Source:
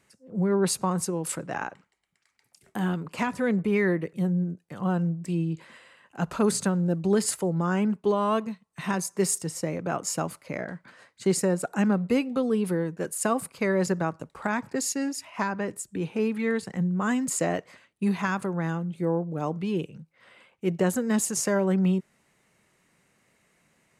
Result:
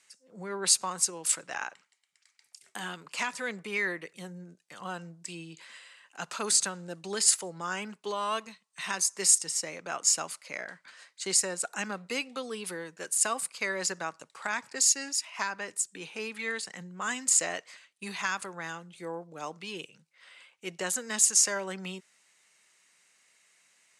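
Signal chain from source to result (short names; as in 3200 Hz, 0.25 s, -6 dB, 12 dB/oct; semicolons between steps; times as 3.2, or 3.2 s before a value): weighting filter ITU-R 468; gain -4.5 dB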